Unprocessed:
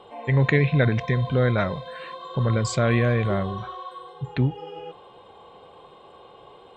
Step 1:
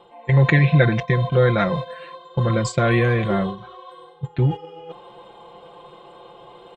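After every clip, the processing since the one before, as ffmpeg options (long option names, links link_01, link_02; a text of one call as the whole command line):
ffmpeg -i in.wav -af "areverse,acompressor=mode=upward:threshold=-24dB:ratio=2.5,areverse,aecho=1:1:5.8:0.78,agate=range=-12dB:threshold=-25dB:ratio=16:detection=peak,volume=2dB" out.wav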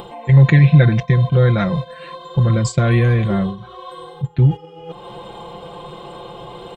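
ffmpeg -i in.wav -af "bass=frequency=250:gain=9,treble=frequency=4000:gain=6,acompressor=mode=upward:threshold=-21dB:ratio=2.5,volume=-2dB" out.wav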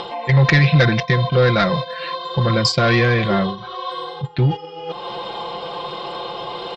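ffmpeg -i in.wav -filter_complex "[0:a]asplit=2[link_01][link_02];[link_02]highpass=frequency=720:poles=1,volume=17dB,asoftclip=type=tanh:threshold=-1dB[link_03];[link_01][link_03]amix=inputs=2:normalize=0,lowpass=frequency=2700:poles=1,volume=-6dB,lowpass=frequency=5000:width_type=q:width=5.2,volume=-2.5dB" out.wav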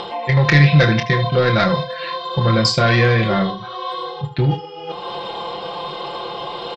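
ffmpeg -i in.wav -af "aecho=1:1:27|76:0.422|0.211" out.wav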